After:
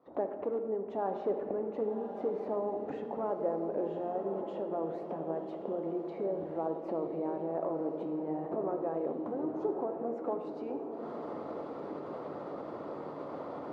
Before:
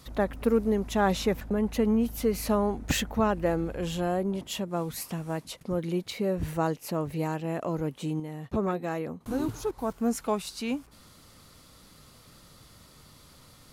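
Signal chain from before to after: recorder AGC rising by 71 dB/s; harmonic-percussive split percussive +4 dB; in parallel at -12 dB: integer overflow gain 16 dB; on the sum: Butterworth band-pass 530 Hz, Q 0.96; echo that smears into a reverb 1105 ms, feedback 41%, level -7.5 dB; on a send at -6 dB: reverberation RT60 1.3 s, pre-delay 6 ms; on the sum: trim -8.5 dB

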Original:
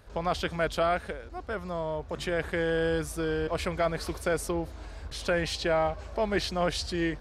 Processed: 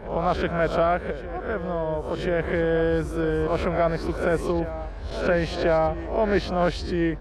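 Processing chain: reverse spectral sustain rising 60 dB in 0.44 s; low-pass 1.1 kHz 6 dB/octave; on a send: reverse echo 1035 ms -13.5 dB; on the sum: trim +6 dB

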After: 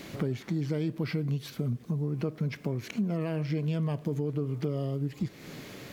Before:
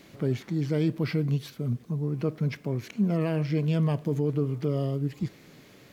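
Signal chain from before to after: compression 4:1, threshold -38 dBFS, peak gain reduction 14.5 dB; trim +8.5 dB

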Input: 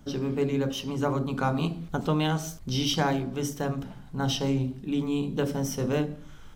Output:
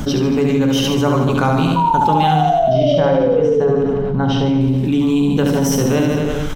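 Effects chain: 2.36–4.61 s: tape spacing loss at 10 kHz 31 dB; 1.76–3.72 s: painted sound fall 410–980 Hz -24 dBFS; reverse bouncing-ball echo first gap 70 ms, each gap 1.1×, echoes 5; level flattener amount 70%; trim +5 dB

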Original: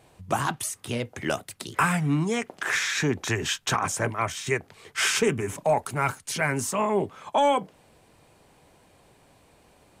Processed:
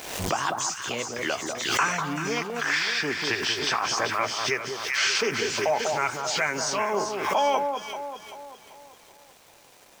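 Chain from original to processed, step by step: knee-point frequency compression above 3.1 kHz 1.5:1; treble shelf 3.5 kHz +12 dB; in parallel at +1 dB: compression, threshold -31 dBFS, peak gain reduction 14 dB; on the sum: tone controls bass -14 dB, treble -5 dB; bit crusher 8-bit; on a send: echo whose repeats swap between lows and highs 194 ms, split 1.3 kHz, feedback 65%, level -4 dB; on the sum: swell ahead of each attack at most 54 dB/s; trim -4.5 dB

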